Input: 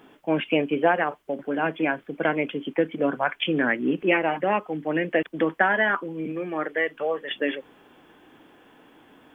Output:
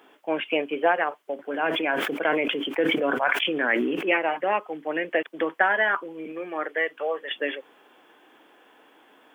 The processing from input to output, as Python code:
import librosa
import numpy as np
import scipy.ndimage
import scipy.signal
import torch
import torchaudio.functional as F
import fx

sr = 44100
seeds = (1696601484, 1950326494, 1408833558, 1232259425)

y = scipy.signal.sosfilt(scipy.signal.butter(2, 410.0, 'highpass', fs=sr, output='sos'), x)
y = fx.sustainer(y, sr, db_per_s=23.0, at=(1.52, 4.04), fade=0.02)